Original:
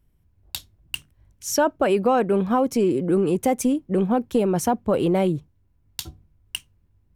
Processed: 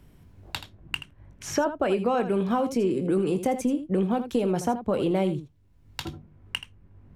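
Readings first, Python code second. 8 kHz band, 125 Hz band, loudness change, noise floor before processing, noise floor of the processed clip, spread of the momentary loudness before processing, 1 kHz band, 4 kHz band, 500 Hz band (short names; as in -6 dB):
-8.0 dB, -3.5 dB, -5.5 dB, -63 dBFS, -58 dBFS, 15 LU, -5.0 dB, -2.5 dB, -4.5 dB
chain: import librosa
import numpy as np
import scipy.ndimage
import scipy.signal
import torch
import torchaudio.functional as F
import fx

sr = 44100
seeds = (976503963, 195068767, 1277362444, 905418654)

y = fx.high_shelf(x, sr, hz=10000.0, db=-11.0)
y = fx.room_early_taps(y, sr, ms=(21, 79), db=(-12.0, -12.0))
y = fx.band_squash(y, sr, depth_pct=70)
y = y * librosa.db_to_amplitude(-5.0)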